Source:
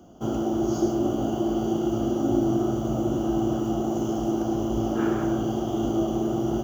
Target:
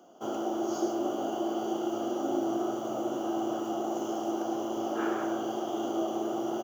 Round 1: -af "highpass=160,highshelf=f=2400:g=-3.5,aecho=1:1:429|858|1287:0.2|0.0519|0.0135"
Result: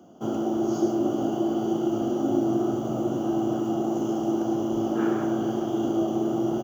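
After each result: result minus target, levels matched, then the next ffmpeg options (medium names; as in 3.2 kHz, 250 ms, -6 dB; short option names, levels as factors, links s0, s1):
125 Hz band +10.5 dB; echo-to-direct +11.5 dB
-af "highpass=470,highshelf=f=2400:g=-3.5,aecho=1:1:429|858|1287:0.2|0.0519|0.0135"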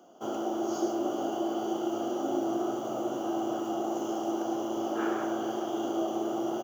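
echo-to-direct +11.5 dB
-af "highpass=470,highshelf=f=2400:g=-3.5,aecho=1:1:429|858:0.0531|0.0138"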